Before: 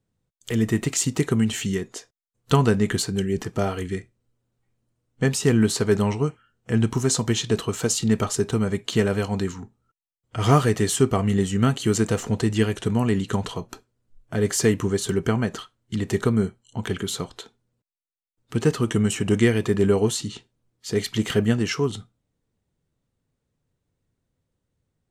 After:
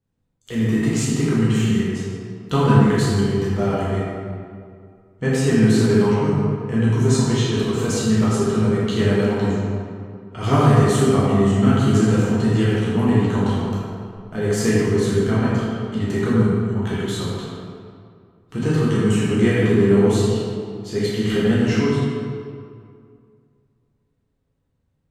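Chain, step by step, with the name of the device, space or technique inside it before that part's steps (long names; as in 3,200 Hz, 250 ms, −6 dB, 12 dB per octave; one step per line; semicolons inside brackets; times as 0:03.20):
swimming-pool hall (convolution reverb RT60 2.2 s, pre-delay 9 ms, DRR −8.5 dB; high-shelf EQ 3,800 Hz −6 dB)
level −5 dB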